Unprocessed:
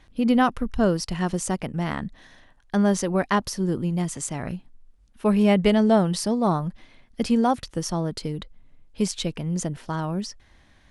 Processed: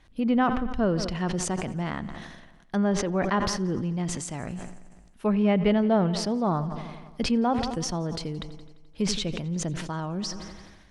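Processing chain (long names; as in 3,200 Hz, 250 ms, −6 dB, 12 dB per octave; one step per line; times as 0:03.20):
treble cut that deepens with the level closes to 2,900 Hz, closed at −18.5 dBFS
echo machine with several playback heads 86 ms, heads first and second, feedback 57%, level −22 dB
level that may fall only so fast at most 39 dB per second
level −4 dB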